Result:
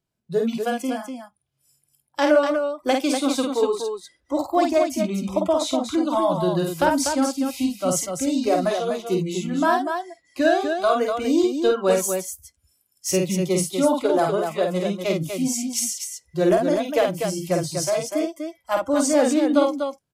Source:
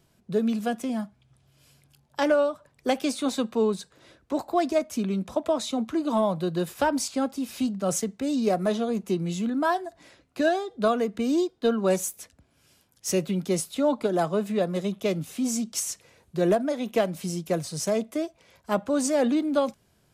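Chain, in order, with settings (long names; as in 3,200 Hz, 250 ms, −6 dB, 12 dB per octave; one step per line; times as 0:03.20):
noise reduction from a noise print of the clip's start 22 dB
loudspeakers that aren't time-aligned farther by 17 metres −4 dB, 84 metres −6 dB
level +3.5 dB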